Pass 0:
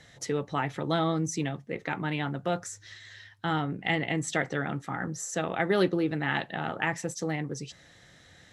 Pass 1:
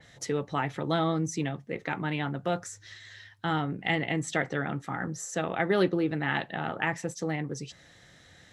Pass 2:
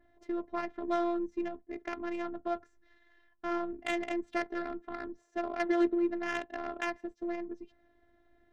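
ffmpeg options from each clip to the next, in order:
-af "adynamicequalizer=threshold=0.00501:dfrequency=4100:dqfactor=0.7:tfrequency=4100:tqfactor=0.7:attack=5:release=100:ratio=0.375:range=2.5:mode=cutabove:tftype=highshelf"
-af "afftfilt=real='hypot(re,im)*cos(PI*b)':imag='0':win_size=512:overlap=0.75,adynamicsmooth=sensitivity=2:basefreq=860"

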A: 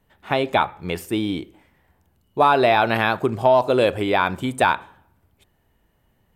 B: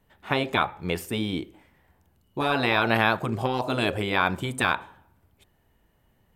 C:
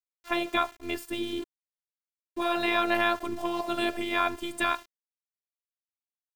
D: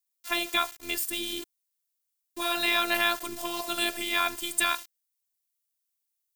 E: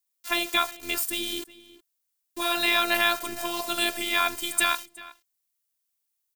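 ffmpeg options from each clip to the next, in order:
-af "afftfilt=real='re*lt(hypot(re,im),0.631)':imag='im*lt(hypot(re,im),0.631)':win_size=1024:overlap=0.75,volume=0.891"
-af "aeval=exprs='val(0)*gte(abs(val(0)),0.0126)':c=same,afftfilt=real='hypot(re,im)*cos(PI*b)':imag='0':win_size=512:overlap=0.75"
-af "crystalizer=i=8:c=0,volume=0.473"
-filter_complex "[0:a]asplit=2[s0][s1];[s1]adelay=367.3,volume=0.126,highshelf=f=4000:g=-8.27[s2];[s0][s2]amix=inputs=2:normalize=0,volume=1.33"

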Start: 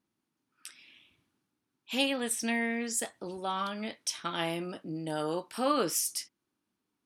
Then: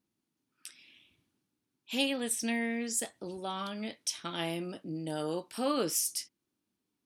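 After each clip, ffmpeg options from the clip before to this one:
-af "equalizer=f=1200:t=o:w=1.7:g=-6"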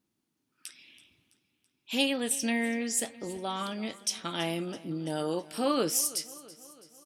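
-af "aecho=1:1:330|660|990|1320|1650:0.106|0.0604|0.0344|0.0196|0.0112,volume=1.41"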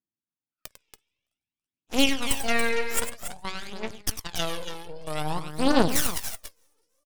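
-af "aeval=exprs='0.224*(cos(1*acos(clip(val(0)/0.224,-1,1)))-cos(1*PI/2))+0.0794*(cos(4*acos(clip(val(0)/0.224,-1,1)))-cos(4*PI/2))+0.00794*(cos(5*acos(clip(val(0)/0.224,-1,1)))-cos(5*PI/2))+0.0398*(cos(7*acos(clip(val(0)/0.224,-1,1)))-cos(7*PI/2))':c=same,aecho=1:1:99.13|282.8:0.282|0.355,aphaser=in_gain=1:out_gain=1:delay=2.4:decay=0.55:speed=0.52:type=triangular"

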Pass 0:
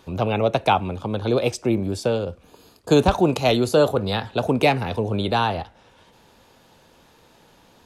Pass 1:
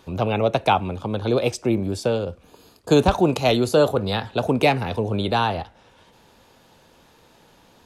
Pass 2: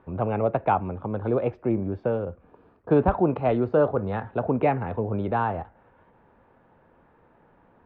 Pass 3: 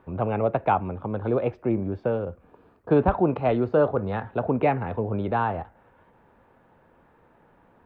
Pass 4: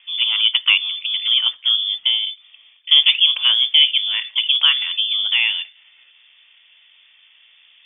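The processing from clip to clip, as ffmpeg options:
-af anull
-af "lowpass=f=1800:w=0.5412,lowpass=f=1800:w=1.3066,volume=0.668"
-af "highshelf=f=3400:g=6.5"
-af "lowpass=f=3100:t=q:w=0.5098,lowpass=f=3100:t=q:w=0.6013,lowpass=f=3100:t=q:w=0.9,lowpass=f=3100:t=q:w=2.563,afreqshift=-3600,volume=2.11"

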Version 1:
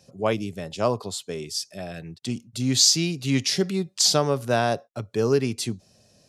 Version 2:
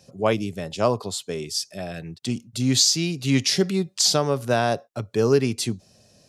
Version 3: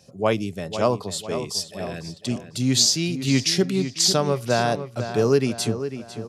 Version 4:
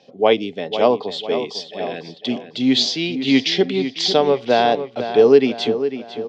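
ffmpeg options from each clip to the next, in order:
-af "alimiter=limit=0.316:level=0:latency=1:release=452,volume=1.33"
-filter_complex "[0:a]asplit=2[s0][s1];[s1]adelay=500,lowpass=f=3400:p=1,volume=0.316,asplit=2[s2][s3];[s3]adelay=500,lowpass=f=3400:p=1,volume=0.48,asplit=2[s4][s5];[s5]adelay=500,lowpass=f=3400:p=1,volume=0.48,asplit=2[s6][s7];[s7]adelay=500,lowpass=f=3400:p=1,volume=0.48,asplit=2[s8][s9];[s9]adelay=500,lowpass=f=3400:p=1,volume=0.48[s10];[s0][s2][s4][s6][s8][s10]amix=inputs=6:normalize=0"
-af "highpass=250,equalizer=f=260:t=q:w=4:g=7,equalizer=f=450:t=q:w=4:g=8,equalizer=f=780:t=q:w=4:g=8,equalizer=f=1300:t=q:w=4:g=-5,equalizer=f=2100:t=q:w=4:g=5,equalizer=f=3300:t=q:w=4:g=10,lowpass=f=4400:w=0.5412,lowpass=f=4400:w=1.3066,volume=1.26"

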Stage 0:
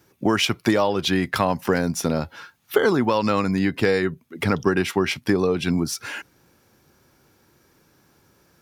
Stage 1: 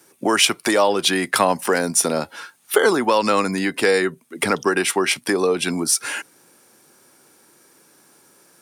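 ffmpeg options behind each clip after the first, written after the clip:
-filter_complex "[0:a]highpass=250,equalizer=f=9100:t=o:w=0.57:g=14.5,acrossover=split=380[s0][s1];[s0]alimiter=limit=0.0668:level=0:latency=1:release=242[s2];[s2][s1]amix=inputs=2:normalize=0,volume=1.68"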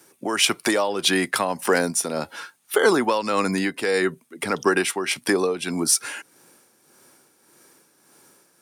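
-af "tremolo=f=1.7:d=0.57"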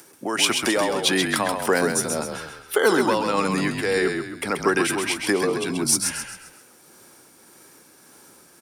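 -filter_complex "[0:a]acompressor=mode=upward:threshold=0.00708:ratio=2.5,asplit=2[s0][s1];[s1]asplit=5[s2][s3][s4][s5][s6];[s2]adelay=132,afreqshift=-37,volume=0.531[s7];[s3]adelay=264,afreqshift=-74,volume=0.219[s8];[s4]adelay=396,afreqshift=-111,volume=0.0891[s9];[s5]adelay=528,afreqshift=-148,volume=0.0367[s10];[s6]adelay=660,afreqshift=-185,volume=0.015[s11];[s7][s8][s9][s10][s11]amix=inputs=5:normalize=0[s12];[s0][s12]amix=inputs=2:normalize=0,volume=0.891"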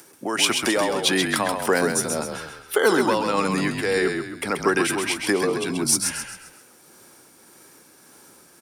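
-af anull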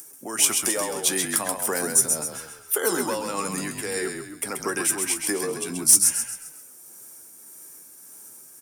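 -af "aexciter=amount=6.9:drive=2.1:freq=5900,asoftclip=type=hard:threshold=1,flanger=delay=6.5:depth=7:regen=59:speed=0.46:shape=triangular,volume=0.708"

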